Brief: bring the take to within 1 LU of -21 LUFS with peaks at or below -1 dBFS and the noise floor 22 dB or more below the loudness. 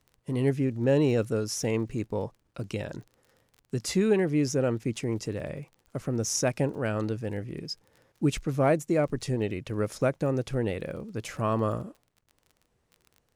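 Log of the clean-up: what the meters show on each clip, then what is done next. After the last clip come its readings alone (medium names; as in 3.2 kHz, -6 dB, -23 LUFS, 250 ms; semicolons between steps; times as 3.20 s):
tick rate 22 per s; loudness -29.0 LUFS; peak level -12.5 dBFS; loudness target -21.0 LUFS
-> de-click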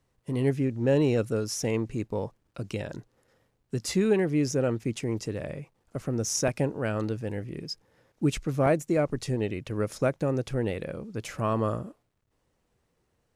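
tick rate 0 per s; loudness -29.0 LUFS; peak level -12.5 dBFS; loudness target -21.0 LUFS
-> trim +8 dB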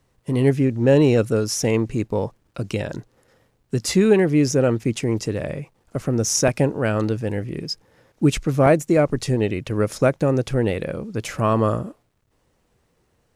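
loudness -21.0 LUFS; peak level -4.5 dBFS; noise floor -67 dBFS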